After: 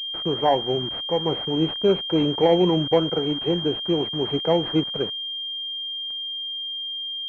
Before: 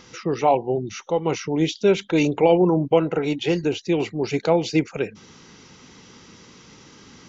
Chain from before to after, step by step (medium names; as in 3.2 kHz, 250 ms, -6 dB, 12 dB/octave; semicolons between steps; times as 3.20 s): bit crusher 6-bit; class-D stage that switches slowly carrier 3.2 kHz; trim -1.5 dB